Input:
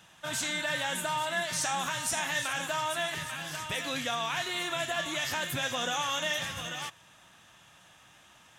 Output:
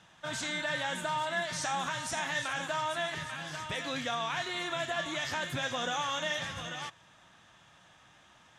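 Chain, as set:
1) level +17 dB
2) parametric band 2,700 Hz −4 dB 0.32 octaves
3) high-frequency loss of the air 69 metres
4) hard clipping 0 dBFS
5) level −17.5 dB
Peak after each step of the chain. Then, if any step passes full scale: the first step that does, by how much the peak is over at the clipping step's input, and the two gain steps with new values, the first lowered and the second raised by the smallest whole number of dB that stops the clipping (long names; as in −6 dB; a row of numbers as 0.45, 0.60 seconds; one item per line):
−2.5, −2.5, −3.5, −3.5, −21.0 dBFS
no step passes full scale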